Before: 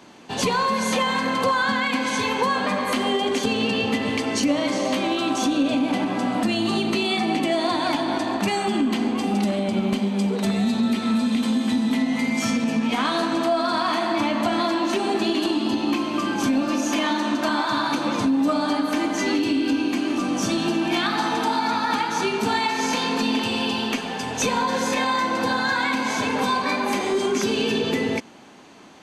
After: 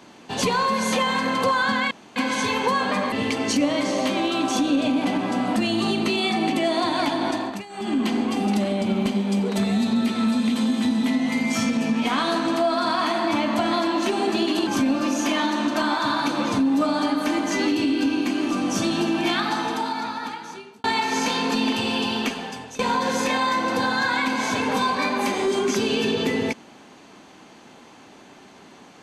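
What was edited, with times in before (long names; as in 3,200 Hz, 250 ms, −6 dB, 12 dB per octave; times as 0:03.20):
0:01.91: splice in room tone 0.25 s
0:02.87–0:03.99: remove
0:08.21–0:08.88: duck −19 dB, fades 0.32 s
0:15.54–0:16.34: remove
0:20.97–0:22.51: fade out
0:23.94–0:24.46: fade out, to −21 dB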